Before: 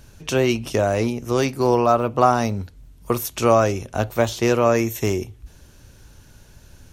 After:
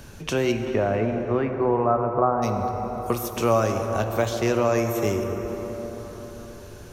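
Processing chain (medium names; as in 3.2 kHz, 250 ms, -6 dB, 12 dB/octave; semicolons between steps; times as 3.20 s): 0.51–2.42 s: low-pass 3 kHz -> 1.2 kHz 24 dB/octave; feedback echo behind a low-pass 134 ms, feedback 73%, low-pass 1.6 kHz, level -14 dB; plate-style reverb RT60 3.7 s, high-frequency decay 0.5×, DRR 7 dB; three bands compressed up and down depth 40%; trim -4.5 dB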